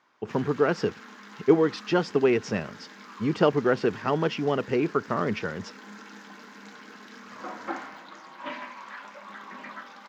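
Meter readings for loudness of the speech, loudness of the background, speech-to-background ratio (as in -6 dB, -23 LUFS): -26.0 LUFS, -43.0 LUFS, 17.0 dB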